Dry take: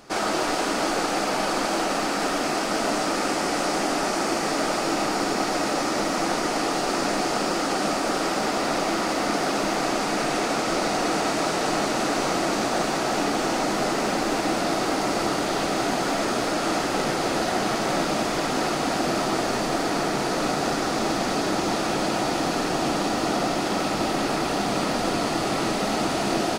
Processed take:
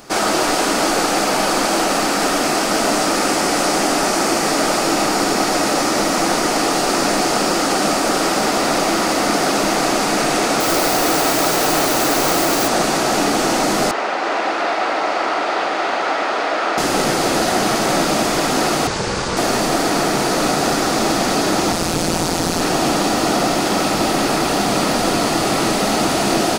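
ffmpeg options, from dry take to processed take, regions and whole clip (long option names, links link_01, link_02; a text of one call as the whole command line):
ffmpeg -i in.wav -filter_complex "[0:a]asettb=1/sr,asplit=3[link_01][link_02][link_03];[link_01]atrim=end=10.604[link_04];[link_02]atrim=start=10.6:end=12.68,asetpts=PTS-STARTPTS,afade=type=in:duration=0.004:curve=qsin,afade=type=out:start_time=2.076:duration=0.004:curve=qsin,bandreject=frequency=210:width=5.3,acrusher=bits=6:dc=4:mix=0:aa=0.000001[link_05];[link_03]atrim=start=12.676[link_06];[link_04][link_05]acrossfade=duration=0.004:curve1=hsin:curve2=qsin[link_07];[link_07][link_06]acrossfade=duration=0.004:curve1=qsin:curve2=hsin,asettb=1/sr,asplit=3[link_08][link_09][link_10];[link_08]atrim=end=13.914[link_11];[link_09]atrim=start=13.91:end=16.78,asetpts=PTS-STARTPTS,afade=type=in:duration=0.004:curve=qsin,afade=type=out:start_time=2.866:duration=0.004:curve=qsin,highpass=580,lowpass=2700,aecho=1:1:321:0.668,atrim=end_sample=126567[link_12];[link_10]atrim=start=16.776[link_13];[link_11][link_12]acrossfade=duration=0.004:curve1=hsin:curve2=qsin[link_14];[link_14][link_13]acrossfade=duration=0.004:curve1=qsin:curve2=hsin,asettb=1/sr,asplit=3[link_15][link_16][link_17];[link_15]atrim=end=18.874[link_18];[link_16]atrim=start=18.87:end=19.37,asetpts=PTS-STARTPTS,afade=type=in:duration=0.004:curve=qsin,afade=type=out:start_time=0.496:duration=0.004:curve=qsin,lowpass=frequency=8400:width=0.5412,lowpass=frequency=8400:width=1.3066,equalizer=frequency=560:width_type=o:width=0.63:gain=-7,aeval=exprs='val(0)*sin(2*PI*140*n/s)':channel_layout=same[link_19];[link_17]atrim=start=19.366[link_20];[link_18][link_19]acrossfade=duration=0.004:curve1=hsin:curve2=qsin[link_21];[link_21][link_20]acrossfade=duration=0.004:curve1=qsin:curve2=hsin,asettb=1/sr,asplit=3[link_22][link_23][link_24];[link_22]atrim=end=21.724[link_25];[link_23]atrim=start=21.72:end=22.61,asetpts=PTS-STARTPTS,afade=type=in:duration=0.004:curve=qsin,afade=type=out:start_time=0.886:duration=0.004:curve=qsin,bass=frequency=250:gain=8,treble=frequency=4000:gain=5,tremolo=f=170:d=0.889[link_26];[link_24]atrim=start=22.606[link_27];[link_25][link_26]acrossfade=duration=0.004:curve1=hsin:curve2=qsin[link_28];[link_28][link_27]acrossfade=duration=0.004:curve1=qsin:curve2=hsin,highshelf=frequency=8500:gain=9,acontrast=85" out.wav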